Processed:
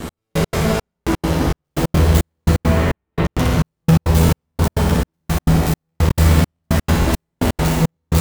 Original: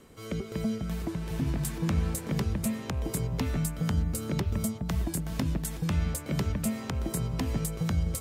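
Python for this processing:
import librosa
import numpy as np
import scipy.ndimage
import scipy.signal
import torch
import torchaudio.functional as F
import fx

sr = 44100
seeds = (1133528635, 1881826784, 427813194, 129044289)

y = fx.tracing_dist(x, sr, depth_ms=0.16)
y = np.clip(y, -10.0 ** (-33.5 / 20.0), 10.0 ** (-33.5 / 20.0))
y = fx.low_shelf(y, sr, hz=170.0, db=10.0)
y = fx.fuzz(y, sr, gain_db=46.0, gate_db=-54.0)
y = fx.lowpass(y, sr, hz=3200.0, slope=24, at=(2.58, 3.25))
y = fx.room_early_taps(y, sr, ms=(12, 61), db=(-3.0, -3.5))
y = fx.rev_schroeder(y, sr, rt60_s=2.8, comb_ms=25, drr_db=-2.0)
y = fx.step_gate(y, sr, bpm=170, pattern='x...x.xx', floor_db=-60.0, edge_ms=4.5)
y = fx.buffer_crackle(y, sr, first_s=0.56, period_s=0.46, block=1024, kind='repeat')
y = y * librosa.db_to_amplitude(-7.0)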